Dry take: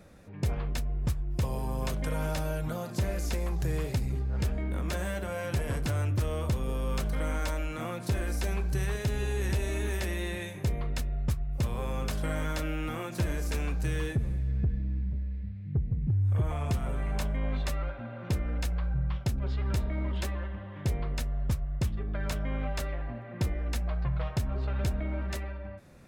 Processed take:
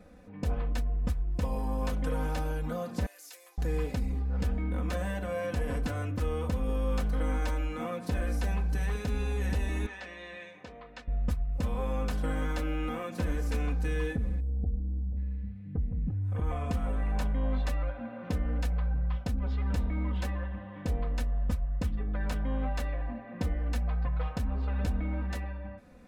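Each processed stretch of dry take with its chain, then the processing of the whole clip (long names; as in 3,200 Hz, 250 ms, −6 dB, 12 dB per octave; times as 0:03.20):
0:03.06–0:03.58: linear-phase brick-wall high-pass 270 Hz + first difference
0:09.86–0:11.08: high-pass filter 1,100 Hz 6 dB per octave + high-frequency loss of the air 140 metres
0:14.40–0:15.17: linear-phase brick-wall band-stop 860–7,600 Hz + parametric band 170 Hz −5.5 dB 1.7 octaves
whole clip: high-shelf EQ 3,200 Hz −8.5 dB; comb filter 4 ms, depth 82%; level −1.5 dB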